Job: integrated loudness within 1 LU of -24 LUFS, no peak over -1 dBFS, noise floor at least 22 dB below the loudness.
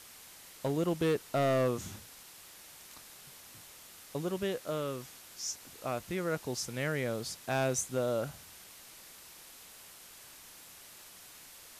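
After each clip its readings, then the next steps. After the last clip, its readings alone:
clipped 0.5%; flat tops at -24.0 dBFS; noise floor -53 dBFS; noise floor target -56 dBFS; loudness -34.0 LUFS; peak -24.0 dBFS; loudness target -24.0 LUFS
-> clip repair -24 dBFS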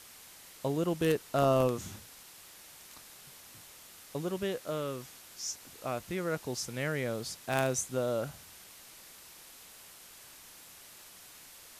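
clipped 0.0%; noise floor -53 dBFS; noise floor target -56 dBFS
-> denoiser 6 dB, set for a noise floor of -53 dBFS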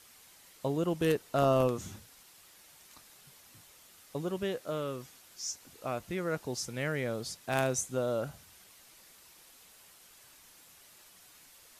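noise floor -58 dBFS; loudness -33.5 LUFS; peak -15.0 dBFS; loudness target -24.0 LUFS
-> gain +9.5 dB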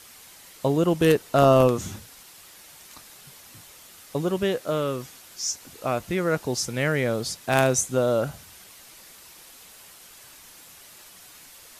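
loudness -24.0 LUFS; peak -5.5 dBFS; noise floor -49 dBFS

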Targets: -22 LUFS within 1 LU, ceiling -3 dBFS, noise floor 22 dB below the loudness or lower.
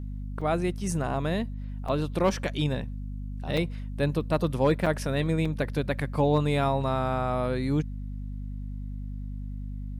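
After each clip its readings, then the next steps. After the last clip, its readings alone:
dropouts 5; longest dropout 4.8 ms; hum 50 Hz; harmonics up to 250 Hz; hum level -33 dBFS; loudness -29.0 LUFS; peak -13.0 dBFS; loudness target -22.0 LUFS
-> interpolate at 0.41/1.88/3.57/4.86/5.45, 4.8 ms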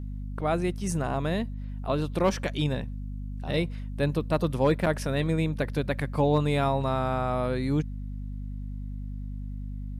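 dropouts 0; hum 50 Hz; harmonics up to 250 Hz; hum level -33 dBFS
-> de-hum 50 Hz, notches 5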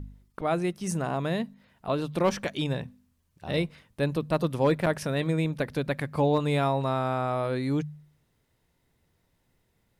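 hum none; loudness -28.5 LUFS; peak -13.5 dBFS; loudness target -22.0 LUFS
-> gain +6.5 dB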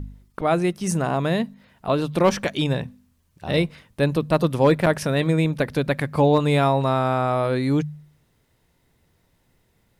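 loudness -22.0 LUFS; peak -7.0 dBFS; noise floor -65 dBFS

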